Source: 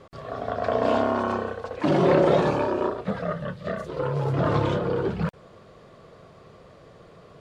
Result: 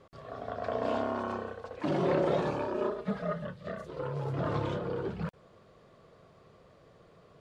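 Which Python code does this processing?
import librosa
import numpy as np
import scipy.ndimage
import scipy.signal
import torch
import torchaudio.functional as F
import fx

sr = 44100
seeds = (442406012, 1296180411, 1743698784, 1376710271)

y = fx.comb(x, sr, ms=4.8, depth=0.94, at=(2.74, 3.47))
y = F.gain(torch.from_numpy(y), -9.0).numpy()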